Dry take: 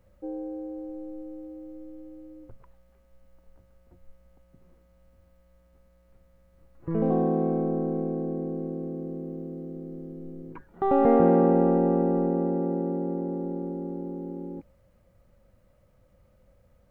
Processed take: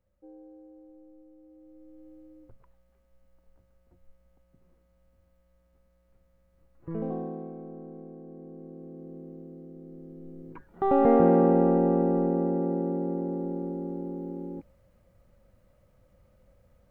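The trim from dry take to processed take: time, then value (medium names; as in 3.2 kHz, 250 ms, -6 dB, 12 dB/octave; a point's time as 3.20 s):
1.36 s -15 dB
2.10 s -6 dB
6.92 s -6 dB
7.54 s -15.5 dB
8.23 s -15.5 dB
9.17 s -8 dB
9.74 s -8 dB
10.85 s -0.5 dB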